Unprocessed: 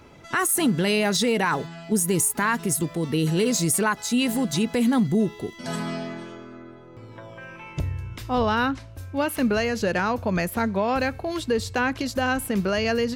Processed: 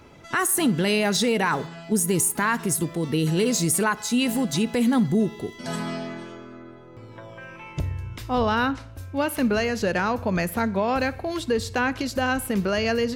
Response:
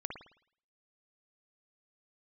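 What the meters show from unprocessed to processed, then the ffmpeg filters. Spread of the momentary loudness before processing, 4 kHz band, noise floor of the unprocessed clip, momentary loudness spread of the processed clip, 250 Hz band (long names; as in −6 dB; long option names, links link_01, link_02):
13 LU, 0.0 dB, −44 dBFS, 13 LU, 0.0 dB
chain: -filter_complex "[0:a]asplit=2[link_01][link_02];[1:a]atrim=start_sample=2205,adelay=58[link_03];[link_02][link_03]afir=irnorm=-1:irlink=0,volume=-19.5dB[link_04];[link_01][link_04]amix=inputs=2:normalize=0"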